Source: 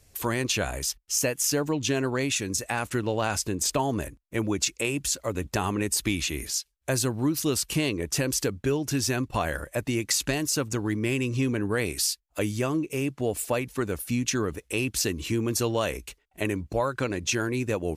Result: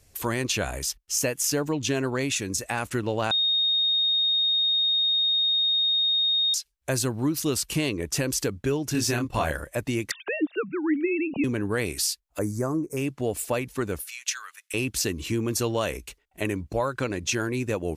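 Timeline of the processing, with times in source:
3.31–6.54 bleep 3710 Hz -20 dBFS
8.92–9.52 doubler 26 ms -4 dB
10.11–11.44 sine-wave speech
12.39–12.97 Butterworth band-stop 3000 Hz, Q 0.68
14.01–14.74 HPF 1300 Hz 24 dB/oct

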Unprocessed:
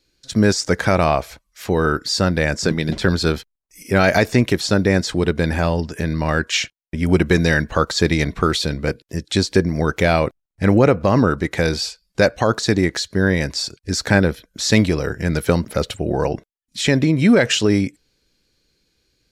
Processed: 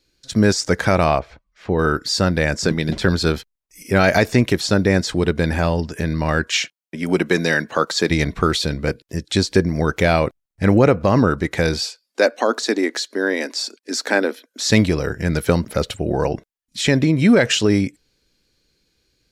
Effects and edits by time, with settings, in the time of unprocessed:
1.19–1.79 tape spacing loss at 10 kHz 27 dB
6.54–8.1 Bessel high-pass 230 Hz, order 4
11.85–14.66 elliptic high-pass 240 Hz

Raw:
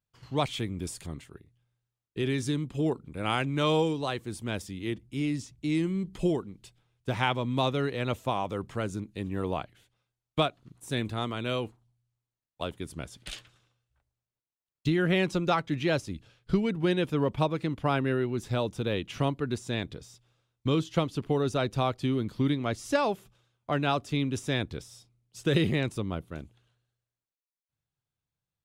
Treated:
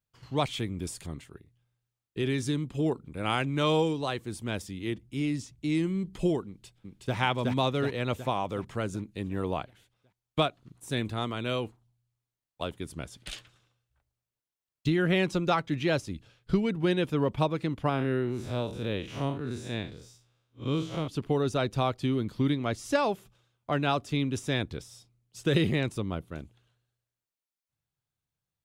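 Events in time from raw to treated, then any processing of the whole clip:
6.47–7.16 echo throw 0.37 s, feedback 55%, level -1 dB
17.89–21.08 time blur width 0.115 s

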